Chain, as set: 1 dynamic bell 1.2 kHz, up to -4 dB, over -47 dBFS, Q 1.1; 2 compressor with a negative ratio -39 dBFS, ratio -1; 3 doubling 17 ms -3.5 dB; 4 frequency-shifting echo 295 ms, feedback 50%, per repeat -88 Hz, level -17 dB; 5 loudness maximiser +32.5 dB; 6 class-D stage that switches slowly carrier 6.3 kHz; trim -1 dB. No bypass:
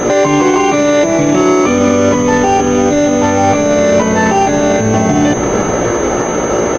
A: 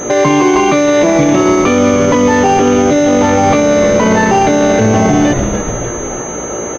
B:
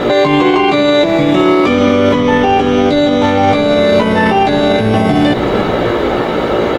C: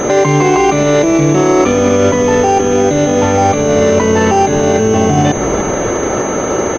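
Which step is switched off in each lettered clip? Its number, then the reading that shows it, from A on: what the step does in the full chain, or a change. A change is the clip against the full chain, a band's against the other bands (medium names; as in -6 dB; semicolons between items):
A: 2, momentary loudness spread change +5 LU; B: 6, 4 kHz band +6.0 dB; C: 3, momentary loudness spread change +1 LU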